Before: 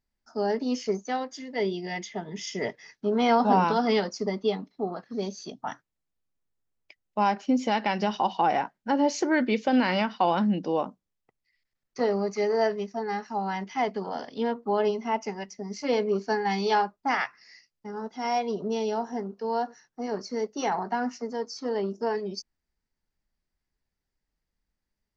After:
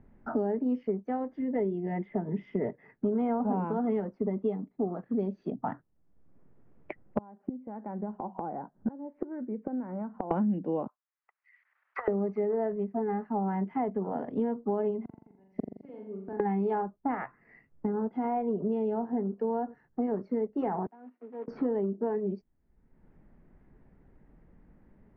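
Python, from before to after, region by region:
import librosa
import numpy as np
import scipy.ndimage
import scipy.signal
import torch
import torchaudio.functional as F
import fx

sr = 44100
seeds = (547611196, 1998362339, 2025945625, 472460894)

y = fx.chain(x, sr, fx.lowpass(hz=1500.0, slope=24),
    fx.gate_flip(shuts_db=-28.0, range_db=-28), at=(7.18, 10.31))
y = fx.chain(y, sr, fx.highpass(hz=1200.0, slope=24),
    fx.high_shelf(hz=4500.0, db=-9.0),
    fx.over_compress(threshold_db=-47.0, ratio=-0.5), at=(10.87, 12.08))
y = fx.chain(y, sr, fx.gate_flip(shuts_db=-30.0, range_db=-41),
    fx.room_flutter(wall_m=7.2, rt60_s=0.55), at=(15.05, 16.4))
y = fx.chain(y, sr, fx.block_float(bits=3),
    fx.highpass(hz=250.0, slope=24),
    fx.gate_flip(shuts_db=-35.0, range_db=-27), at=(20.86, 21.48))
y = scipy.signal.sosfilt(scipy.signal.butter(4, 2200.0, 'lowpass', fs=sr, output='sos'), y)
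y = fx.tilt_shelf(y, sr, db=10.0, hz=820.0)
y = fx.band_squash(y, sr, depth_pct=100)
y = y * 10.0 ** (-7.0 / 20.0)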